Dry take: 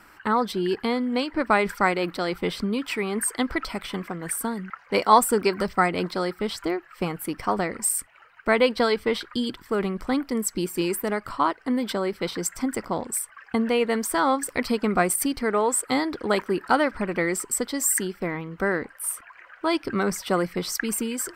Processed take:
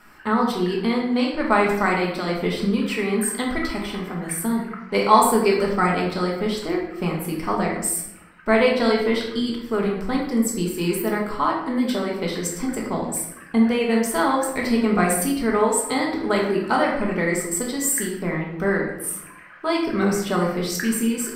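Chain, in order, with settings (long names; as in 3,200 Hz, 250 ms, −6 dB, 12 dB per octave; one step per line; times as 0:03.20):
rectangular room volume 250 cubic metres, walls mixed, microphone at 1.4 metres
level −2 dB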